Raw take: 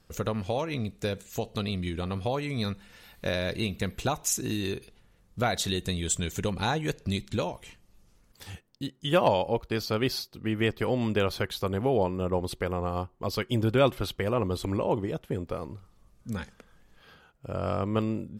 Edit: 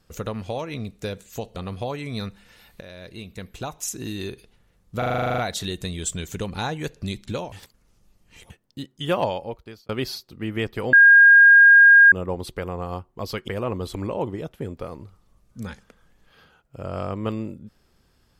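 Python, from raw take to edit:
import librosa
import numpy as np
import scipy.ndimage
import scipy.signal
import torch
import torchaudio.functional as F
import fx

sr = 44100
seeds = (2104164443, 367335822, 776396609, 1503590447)

y = fx.edit(x, sr, fx.cut(start_s=1.56, length_s=0.44),
    fx.fade_in_from(start_s=3.25, length_s=1.48, floor_db=-15.5),
    fx.stutter(start_s=5.42, slice_s=0.04, count=11),
    fx.reverse_span(start_s=7.56, length_s=0.98),
    fx.fade_out_span(start_s=9.22, length_s=0.71),
    fx.bleep(start_s=10.97, length_s=1.19, hz=1620.0, db=-7.5),
    fx.cut(start_s=13.52, length_s=0.66), tone=tone)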